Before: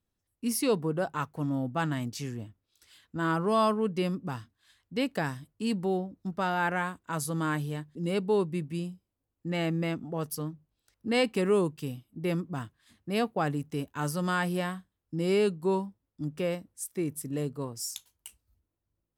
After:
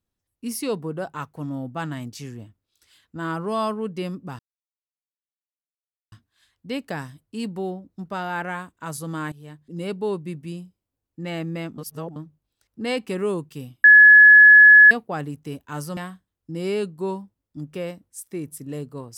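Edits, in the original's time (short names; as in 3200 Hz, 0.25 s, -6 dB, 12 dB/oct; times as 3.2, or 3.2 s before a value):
4.39 insert silence 1.73 s
7.59–8.16 fade in equal-power, from -19.5 dB
10.05–10.43 reverse
12.11–13.18 bleep 1700 Hz -6 dBFS
14.24–14.61 cut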